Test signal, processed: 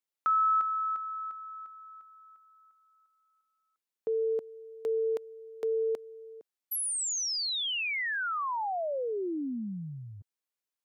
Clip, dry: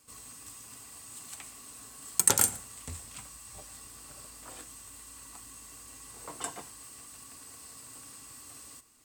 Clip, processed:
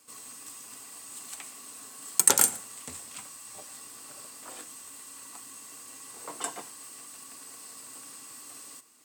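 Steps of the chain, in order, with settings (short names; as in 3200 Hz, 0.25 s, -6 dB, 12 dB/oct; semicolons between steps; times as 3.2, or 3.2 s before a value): HPF 220 Hz 12 dB/oct; gain +3 dB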